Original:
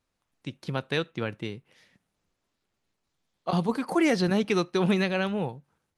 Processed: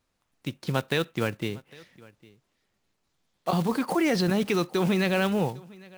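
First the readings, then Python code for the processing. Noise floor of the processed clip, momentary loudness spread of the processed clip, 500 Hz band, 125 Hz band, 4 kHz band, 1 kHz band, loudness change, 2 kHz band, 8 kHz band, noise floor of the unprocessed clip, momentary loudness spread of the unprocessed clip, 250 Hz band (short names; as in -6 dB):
-76 dBFS, 12 LU, +1.0 dB, +1.5 dB, +1.5 dB, +1.5 dB, +0.5 dB, +1.0 dB, +3.0 dB, -81 dBFS, 14 LU, +0.5 dB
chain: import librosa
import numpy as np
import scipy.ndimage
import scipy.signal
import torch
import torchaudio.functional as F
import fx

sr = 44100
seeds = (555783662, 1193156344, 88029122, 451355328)

p1 = fx.block_float(x, sr, bits=5)
p2 = fx.over_compress(p1, sr, threshold_db=-27.0, ratio=-0.5)
p3 = p1 + F.gain(torch.from_numpy(p2), -2.5).numpy()
p4 = p3 + 10.0 ** (-23.5 / 20.0) * np.pad(p3, (int(805 * sr / 1000.0), 0))[:len(p3)]
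y = F.gain(torch.from_numpy(p4), -2.5).numpy()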